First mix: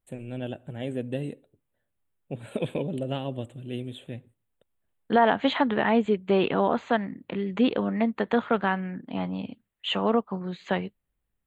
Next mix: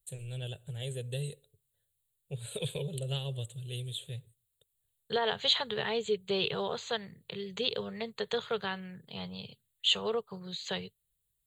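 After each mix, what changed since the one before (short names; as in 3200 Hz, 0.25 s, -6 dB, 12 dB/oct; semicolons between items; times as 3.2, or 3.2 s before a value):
second voice: add HPF 95 Hz; master: add EQ curve 140 Hz 0 dB, 290 Hz -29 dB, 420 Hz -4 dB, 660 Hz -14 dB, 2300 Hz -7 dB, 4100 Hz +12 dB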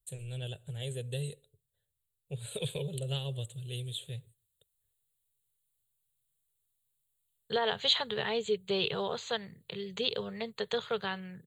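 second voice: entry +2.40 s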